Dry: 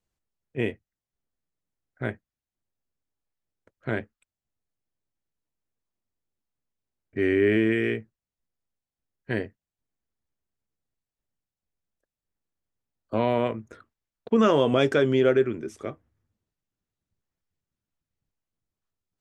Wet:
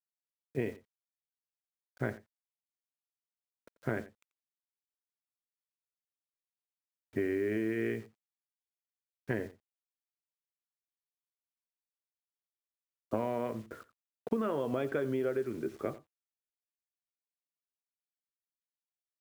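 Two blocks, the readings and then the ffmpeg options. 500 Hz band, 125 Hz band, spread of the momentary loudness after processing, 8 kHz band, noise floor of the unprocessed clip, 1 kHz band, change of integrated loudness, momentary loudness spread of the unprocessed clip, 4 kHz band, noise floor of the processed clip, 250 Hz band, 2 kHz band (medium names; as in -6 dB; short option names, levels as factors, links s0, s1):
-10.5 dB, -9.5 dB, 18 LU, no reading, under -85 dBFS, -10.5 dB, -11.0 dB, 17 LU, -19.5 dB, under -85 dBFS, -9.5 dB, -11.0 dB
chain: -filter_complex "[0:a]lowpass=1900,lowshelf=f=96:g=-6,acompressor=threshold=0.0316:ratio=16,acrusher=bits=9:mix=0:aa=0.000001,asplit=2[s0][s1];[s1]adelay=87.46,volume=0.141,highshelf=f=4000:g=-1.97[s2];[s0][s2]amix=inputs=2:normalize=0,volume=1.19"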